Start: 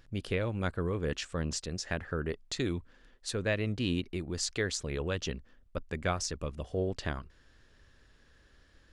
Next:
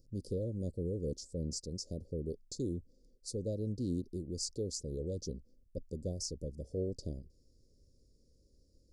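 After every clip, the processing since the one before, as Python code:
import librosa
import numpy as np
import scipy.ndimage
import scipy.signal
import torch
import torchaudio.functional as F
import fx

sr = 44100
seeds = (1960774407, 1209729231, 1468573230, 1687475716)

y = scipy.signal.sosfilt(scipy.signal.cheby1(4, 1.0, [540.0, 4800.0], 'bandstop', fs=sr, output='sos'), x)
y = y * 10.0 ** (-3.5 / 20.0)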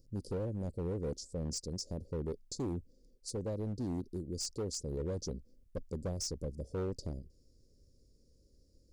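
y = fx.rider(x, sr, range_db=3, speed_s=2.0)
y = np.clip(y, -10.0 ** (-33.5 / 20.0), 10.0 ** (-33.5 / 20.0))
y = y * 10.0 ** (1.5 / 20.0)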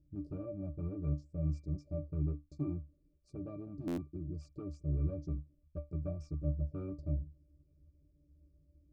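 y = fx.octave_resonator(x, sr, note='D', decay_s=0.2)
y = fx.buffer_glitch(y, sr, at_s=(3.87,), block=512, repeats=8)
y = y * 10.0 ** (10.5 / 20.0)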